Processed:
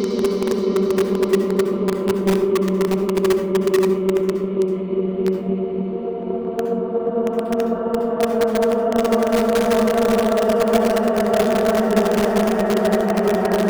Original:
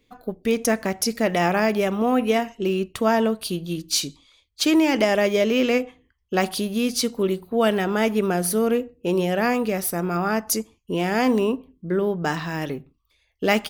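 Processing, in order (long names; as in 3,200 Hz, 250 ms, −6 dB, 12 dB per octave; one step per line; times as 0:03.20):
low-pass that shuts in the quiet parts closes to 580 Hz, open at −17 dBFS
mains-hum notches 60/120/180/240/300 Hz
treble cut that deepens with the level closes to 920 Hz, closed at −16.5 dBFS
extreme stretch with random phases 21×, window 0.50 s, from 0:07.14
transient designer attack +8 dB, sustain +4 dB
in parallel at −6 dB: wrap-around overflow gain 12.5 dB
on the sum: convolution reverb RT60 0.50 s, pre-delay 57 ms, DRR 9.5 dB
level −1 dB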